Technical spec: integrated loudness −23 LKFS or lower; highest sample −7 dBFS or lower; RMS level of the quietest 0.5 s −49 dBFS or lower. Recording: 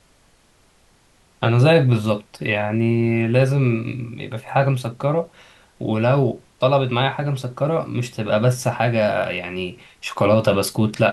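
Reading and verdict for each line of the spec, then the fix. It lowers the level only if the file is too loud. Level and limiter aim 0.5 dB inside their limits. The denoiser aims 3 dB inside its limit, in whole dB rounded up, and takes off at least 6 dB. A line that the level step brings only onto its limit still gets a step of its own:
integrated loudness −20.0 LKFS: out of spec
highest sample −4.0 dBFS: out of spec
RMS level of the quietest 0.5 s −57 dBFS: in spec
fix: level −3.5 dB

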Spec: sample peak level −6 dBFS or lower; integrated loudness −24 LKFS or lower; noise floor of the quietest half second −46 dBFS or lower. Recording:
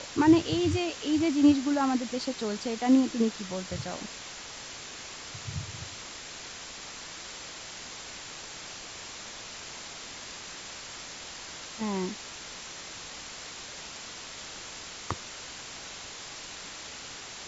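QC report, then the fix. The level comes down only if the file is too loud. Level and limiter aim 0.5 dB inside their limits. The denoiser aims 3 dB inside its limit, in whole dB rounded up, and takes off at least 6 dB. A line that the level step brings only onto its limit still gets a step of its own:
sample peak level −10.0 dBFS: in spec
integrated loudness −32.0 LKFS: in spec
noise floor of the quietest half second −43 dBFS: out of spec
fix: broadband denoise 6 dB, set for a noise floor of −43 dBFS

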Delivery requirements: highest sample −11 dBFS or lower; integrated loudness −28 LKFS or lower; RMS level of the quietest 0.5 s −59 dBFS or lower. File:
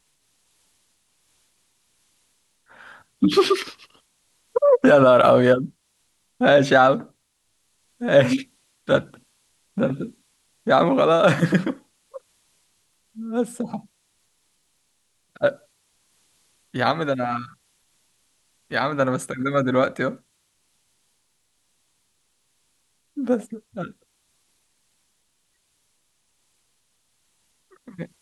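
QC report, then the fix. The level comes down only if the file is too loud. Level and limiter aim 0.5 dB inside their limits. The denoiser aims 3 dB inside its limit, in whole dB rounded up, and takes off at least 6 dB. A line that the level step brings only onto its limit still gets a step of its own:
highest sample −5.0 dBFS: out of spec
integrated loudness −20.0 LKFS: out of spec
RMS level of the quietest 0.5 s −69 dBFS: in spec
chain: level −8.5 dB

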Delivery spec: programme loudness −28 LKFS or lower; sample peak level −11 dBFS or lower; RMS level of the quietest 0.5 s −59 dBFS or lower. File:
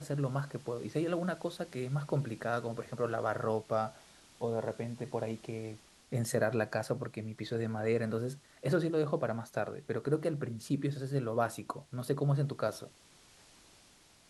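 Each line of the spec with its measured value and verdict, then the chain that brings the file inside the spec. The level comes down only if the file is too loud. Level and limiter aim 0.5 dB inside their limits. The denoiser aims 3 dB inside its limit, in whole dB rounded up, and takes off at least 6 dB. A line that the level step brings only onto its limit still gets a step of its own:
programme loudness −35.0 LKFS: in spec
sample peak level −17.0 dBFS: in spec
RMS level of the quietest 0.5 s −62 dBFS: in spec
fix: no processing needed

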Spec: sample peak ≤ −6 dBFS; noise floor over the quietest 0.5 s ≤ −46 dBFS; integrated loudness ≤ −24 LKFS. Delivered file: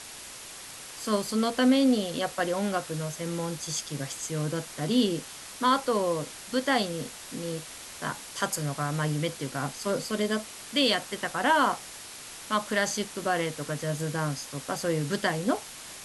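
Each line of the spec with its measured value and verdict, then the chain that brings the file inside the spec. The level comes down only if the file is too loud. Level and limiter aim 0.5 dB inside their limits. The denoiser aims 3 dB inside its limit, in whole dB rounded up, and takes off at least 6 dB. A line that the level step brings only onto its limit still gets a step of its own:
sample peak −11.0 dBFS: in spec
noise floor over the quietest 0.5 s −43 dBFS: out of spec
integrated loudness −28.5 LKFS: in spec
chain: broadband denoise 6 dB, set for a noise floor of −43 dBFS

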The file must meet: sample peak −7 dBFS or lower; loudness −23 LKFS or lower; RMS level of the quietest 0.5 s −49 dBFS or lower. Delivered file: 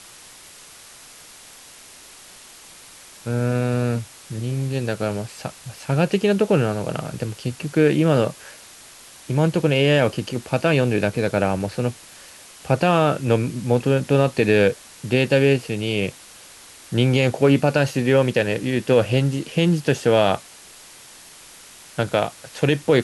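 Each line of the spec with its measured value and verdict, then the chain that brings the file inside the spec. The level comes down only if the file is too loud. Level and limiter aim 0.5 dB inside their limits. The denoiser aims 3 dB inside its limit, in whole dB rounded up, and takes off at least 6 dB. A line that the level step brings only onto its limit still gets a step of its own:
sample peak −5.5 dBFS: out of spec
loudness −20.5 LKFS: out of spec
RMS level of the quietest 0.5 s −45 dBFS: out of spec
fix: broadband denoise 6 dB, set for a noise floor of −45 dBFS
level −3 dB

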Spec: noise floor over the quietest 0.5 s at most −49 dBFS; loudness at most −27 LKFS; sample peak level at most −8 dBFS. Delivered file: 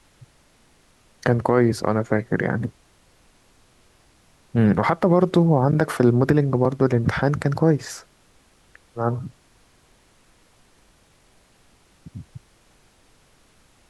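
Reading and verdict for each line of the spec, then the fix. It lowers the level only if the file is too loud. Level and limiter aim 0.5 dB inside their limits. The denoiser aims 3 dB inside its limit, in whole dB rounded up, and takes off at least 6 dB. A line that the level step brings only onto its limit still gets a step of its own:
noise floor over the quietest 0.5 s −57 dBFS: in spec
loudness −20.5 LKFS: out of spec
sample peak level −5.5 dBFS: out of spec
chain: level −7 dB

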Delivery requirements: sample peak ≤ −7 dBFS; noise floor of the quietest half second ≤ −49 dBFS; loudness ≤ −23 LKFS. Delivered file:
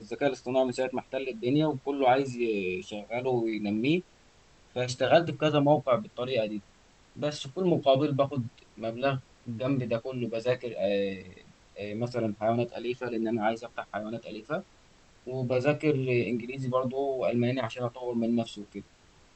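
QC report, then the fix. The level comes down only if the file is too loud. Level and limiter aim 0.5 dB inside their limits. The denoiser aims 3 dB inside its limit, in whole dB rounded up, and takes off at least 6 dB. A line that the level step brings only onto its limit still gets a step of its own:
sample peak −9.0 dBFS: in spec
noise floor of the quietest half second −59 dBFS: in spec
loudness −29.5 LKFS: in spec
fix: no processing needed

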